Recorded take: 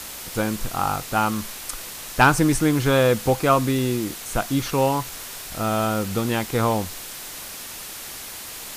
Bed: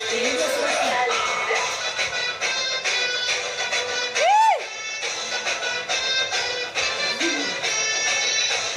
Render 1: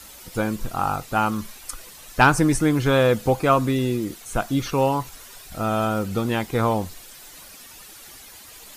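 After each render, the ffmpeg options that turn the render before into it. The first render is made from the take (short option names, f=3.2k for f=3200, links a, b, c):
-af "afftdn=nr=11:nf=-36"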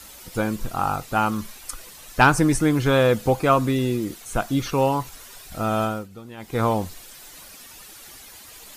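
-filter_complex "[0:a]asplit=3[a][b][c];[a]atrim=end=6.08,asetpts=PTS-STARTPTS,afade=t=out:st=5.82:d=0.26:silence=0.149624[d];[b]atrim=start=6.08:end=6.37,asetpts=PTS-STARTPTS,volume=-16.5dB[e];[c]atrim=start=6.37,asetpts=PTS-STARTPTS,afade=t=in:d=0.26:silence=0.149624[f];[d][e][f]concat=n=3:v=0:a=1"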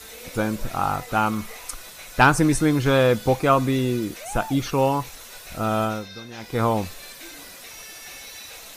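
-filter_complex "[1:a]volume=-20dB[a];[0:a][a]amix=inputs=2:normalize=0"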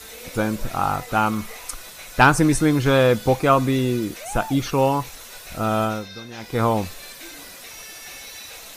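-af "volume=1.5dB"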